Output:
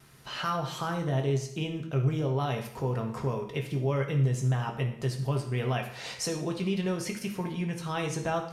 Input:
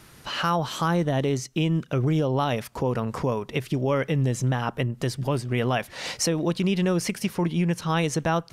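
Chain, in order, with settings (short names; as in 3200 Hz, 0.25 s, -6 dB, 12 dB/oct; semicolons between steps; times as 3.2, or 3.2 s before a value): vibrato 0.58 Hz 11 cents; on a send: reverb RT60 0.75 s, pre-delay 4 ms, DRR 1.5 dB; on the sum: gain -8.5 dB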